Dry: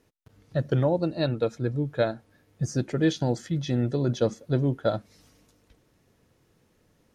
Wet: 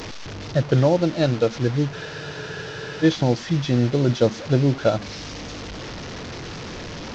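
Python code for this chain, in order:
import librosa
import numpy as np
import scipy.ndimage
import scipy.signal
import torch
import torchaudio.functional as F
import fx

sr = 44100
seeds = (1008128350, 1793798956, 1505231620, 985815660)

y = fx.delta_mod(x, sr, bps=32000, step_db=-33.5)
y = fx.spec_freeze(y, sr, seeds[0], at_s=1.95, hold_s=1.07)
y = y * librosa.db_to_amplitude(6.0)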